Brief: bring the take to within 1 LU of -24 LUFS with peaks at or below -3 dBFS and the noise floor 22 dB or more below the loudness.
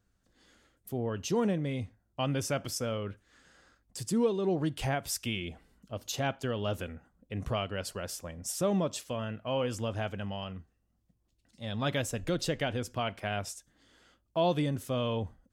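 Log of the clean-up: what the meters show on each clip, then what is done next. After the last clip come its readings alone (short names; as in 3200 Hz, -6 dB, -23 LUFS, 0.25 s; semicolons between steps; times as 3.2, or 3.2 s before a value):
loudness -33.5 LUFS; peak -17.5 dBFS; loudness target -24.0 LUFS
-> gain +9.5 dB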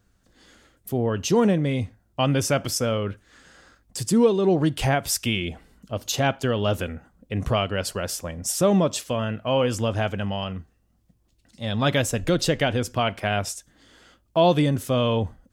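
loudness -24.0 LUFS; peak -8.0 dBFS; noise floor -65 dBFS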